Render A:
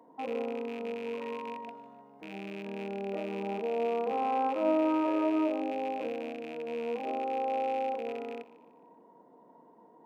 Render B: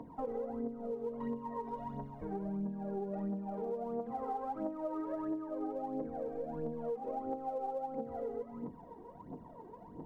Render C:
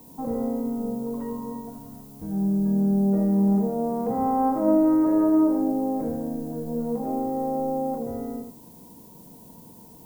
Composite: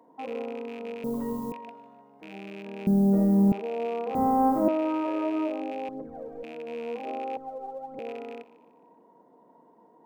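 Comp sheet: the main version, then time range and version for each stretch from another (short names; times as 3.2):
A
1.04–1.52 from C
2.87–3.52 from C
4.15–4.68 from C
5.89–6.43 from B
7.37–7.99 from B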